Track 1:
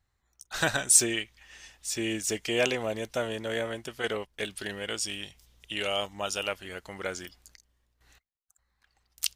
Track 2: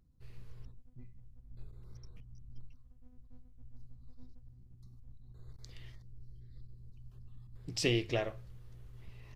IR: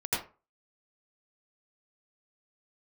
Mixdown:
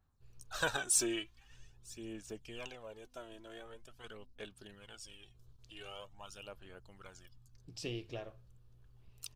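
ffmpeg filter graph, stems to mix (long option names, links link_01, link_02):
-filter_complex "[0:a]equalizer=frequency=1100:width=1.5:gain=3.5,aphaser=in_gain=1:out_gain=1:delay=3.1:decay=0.57:speed=0.45:type=sinusoidal,adynamicequalizer=threshold=0.00891:dfrequency=4500:dqfactor=0.7:tfrequency=4500:tqfactor=0.7:attack=5:release=100:ratio=0.375:range=2.5:mode=cutabove:tftype=highshelf,volume=-9dB,afade=type=out:start_time=1.35:duration=0.28:silence=0.281838[link_01];[1:a]volume=-10.5dB[link_02];[link_01][link_02]amix=inputs=2:normalize=0,equalizer=frequency=2000:width=6.1:gain=-11.5"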